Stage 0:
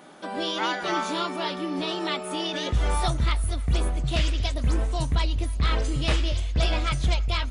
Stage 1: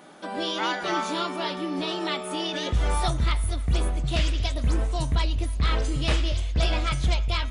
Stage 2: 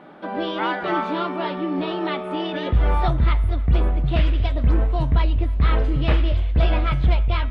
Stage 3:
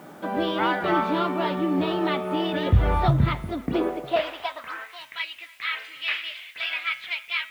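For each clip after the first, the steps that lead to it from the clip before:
de-hum 128.9 Hz, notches 30
distance through air 450 m; trim +6 dB
word length cut 10-bit, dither triangular; high-pass sweep 87 Hz -> 2.2 kHz, 3.01–5.00 s

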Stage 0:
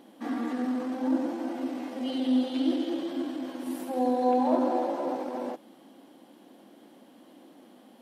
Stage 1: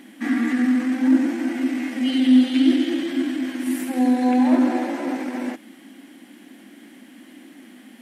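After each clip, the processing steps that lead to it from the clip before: ten-band graphic EQ 125 Hz -10 dB, 250 Hz +7 dB, 500 Hz -11 dB, 1 kHz -8 dB, 2 kHz +12 dB, 4 kHz -4 dB, 8 kHz +5 dB; trim +8.5 dB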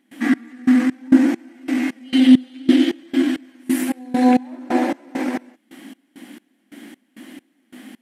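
trance gate ".xx...xx." 134 bpm -24 dB; trim +5.5 dB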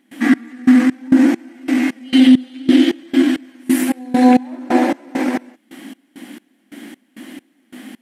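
loudness maximiser +5.5 dB; trim -1 dB

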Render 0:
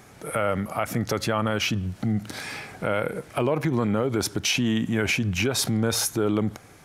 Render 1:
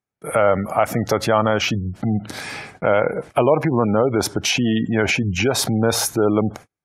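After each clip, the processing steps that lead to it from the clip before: spectral gate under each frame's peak -30 dB strong; gate -40 dBFS, range -42 dB; dynamic bell 720 Hz, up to +8 dB, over -40 dBFS, Q 0.99; trim +3.5 dB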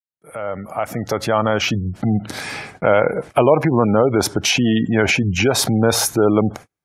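fade-in on the opening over 1.94 s; trim +2.5 dB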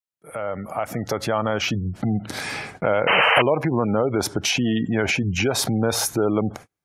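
compression 1.5:1, threshold -27 dBFS, peak gain reduction 7 dB; painted sound noise, 3.07–3.42 s, 440–3100 Hz -17 dBFS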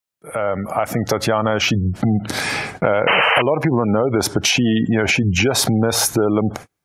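compression 4:1, threshold -20 dBFS, peak gain reduction 7.5 dB; trim +7.5 dB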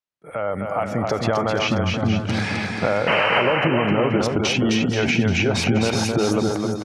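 distance through air 95 m; on a send: bouncing-ball echo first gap 260 ms, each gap 0.85×, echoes 5; on the sum: trim -4 dB

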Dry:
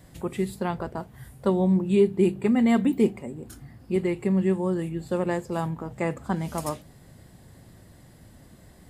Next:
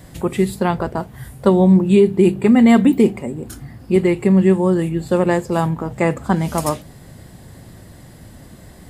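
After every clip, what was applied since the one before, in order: loudness maximiser +12.5 dB; trim -2.5 dB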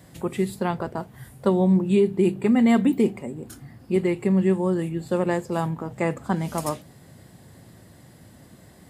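high-pass 90 Hz; trim -7 dB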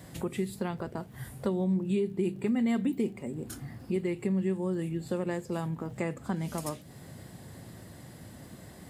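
compression 2:1, threshold -35 dBFS, peak gain reduction 11 dB; dynamic bell 890 Hz, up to -5 dB, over -47 dBFS, Q 0.99; crackle 46 per s -53 dBFS; trim +1.5 dB

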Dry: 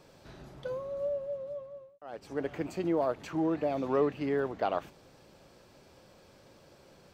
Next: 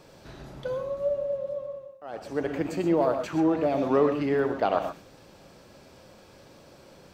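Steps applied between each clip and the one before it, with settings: gated-style reverb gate 150 ms rising, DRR 6.5 dB; trim +5 dB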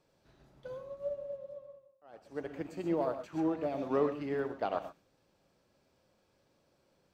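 upward expansion 1.5:1, over -45 dBFS; trim -7 dB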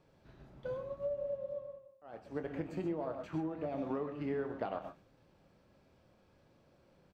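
tone controls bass +5 dB, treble -9 dB; compression 16:1, threshold -37 dBFS, peak gain reduction 14.5 dB; doubling 26 ms -10.5 dB; trim +3.5 dB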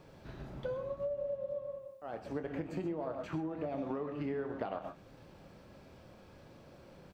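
compression 2.5:1, threshold -51 dBFS, peak gain reduction 12.5 dB; trim +11 dB

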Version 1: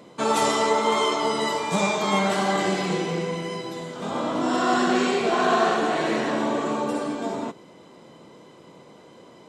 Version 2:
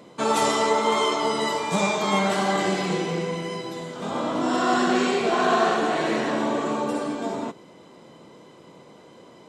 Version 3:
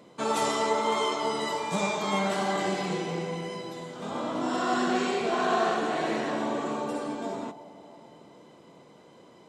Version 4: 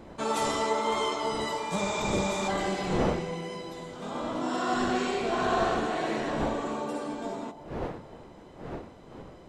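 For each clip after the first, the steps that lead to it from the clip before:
no audible change
on a send at -17.5 dB: resonant low-pass 810 Hz, resonance Q 4.4 + reverberation RT60 3.7 s, pre-delay 28 ms; on the sum: trim -5.5 dB
wind noise 540 Hz -37 dBFS; spectral replace 1.85–2.45 s, 660–8400 Hz before; trim -1.5 dB

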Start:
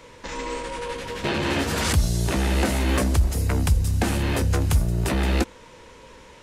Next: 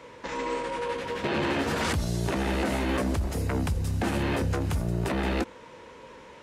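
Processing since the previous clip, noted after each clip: high-pass 180 Hz 6 dB/octave; treble shelf 3.6 kHz -11 dB; peak limiter -20 dBFS, peak gain reduction 7 dB; trim +1.5 dB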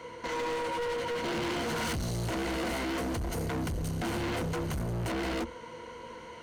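rippled EQ curve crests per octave 1.9, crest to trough 11 dB; overload inside the chain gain 30.5 dB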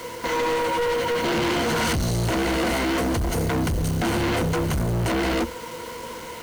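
bit crusher 8-bit; trim +9 dB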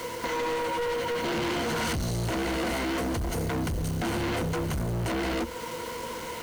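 compression 3:1, threshold -30 dBFS, peak gain reduction 6 dB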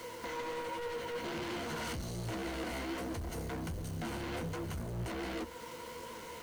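flange 1.3 Hz, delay 8.5 ms, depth 8.4 ms, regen +57%; trim -6 dB

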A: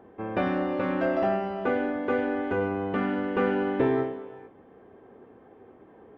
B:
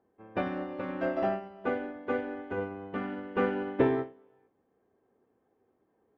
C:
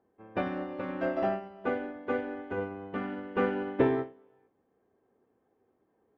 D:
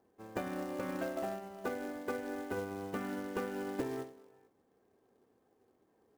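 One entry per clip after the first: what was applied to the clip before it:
upward expansion 2.5:1, over -35 dBFS; trim +1.5 dB
no audible change
short-mantissa float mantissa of 2-bit; compression 10:1, threshold -35 dBFS, peak gain reduction 16 dB; trim +1 dB

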